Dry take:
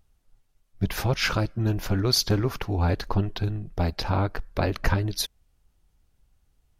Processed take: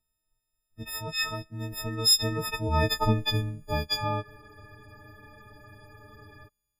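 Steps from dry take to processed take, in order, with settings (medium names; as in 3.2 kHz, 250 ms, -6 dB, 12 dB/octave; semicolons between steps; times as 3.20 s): partials quantised in pitch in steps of 6 st; Doppler pass-by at 3.13 s, 10 m/s, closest 4.4 m; spectral freeze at 4.25 s, 2.21 s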